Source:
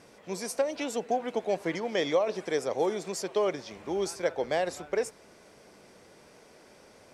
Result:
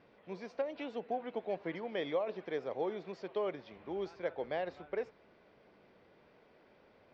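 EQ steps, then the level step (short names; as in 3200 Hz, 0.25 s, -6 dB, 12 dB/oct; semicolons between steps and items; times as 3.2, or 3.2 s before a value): LPF 4000 Hz 24 dB/oct; air absorption 100 m; -8.0 dB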